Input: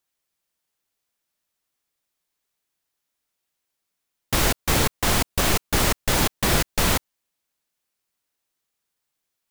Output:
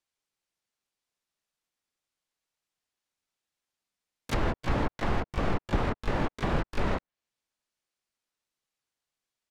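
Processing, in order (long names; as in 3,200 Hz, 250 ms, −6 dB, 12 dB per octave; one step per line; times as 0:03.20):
treble cut that deepens with the level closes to 1,400 Hz, closed at −20 dBFS
low-pass filter 8,900 Hz 12 dB per octave
pitch-shifted copies added −7 semitones −4 dB, +12 semitones −8 dB
level −7 dB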